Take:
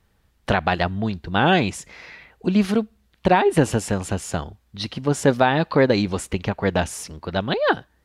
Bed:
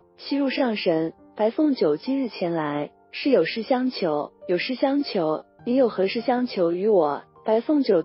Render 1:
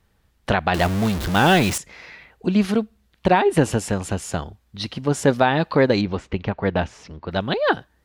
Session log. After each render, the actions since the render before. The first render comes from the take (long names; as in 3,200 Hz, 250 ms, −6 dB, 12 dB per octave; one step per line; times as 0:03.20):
0:00.74–0:01.78: converter with a step at zero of −21.5 dBFS
0:06.01–0:07.31: high-frequency loss of the air 190 metres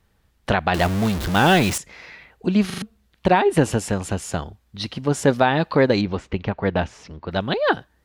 0:02.66: stutter in place 0.04 s, 4 plays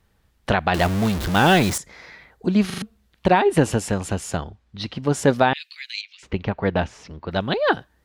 0:01.62–0:02.57: parametric band 2,700 Hz −9.5 dB 0.33 octaves
0:04.37–0:05.03: high-frequency loss of the air 77 metres
0:05.53–0:06.23: elliptic high-pass filter 2,300 Hz, stop band 80 dB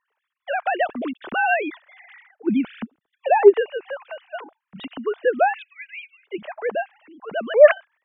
three sine waves on the formant tracks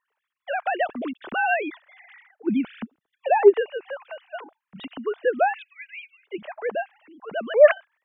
level −2.5 dB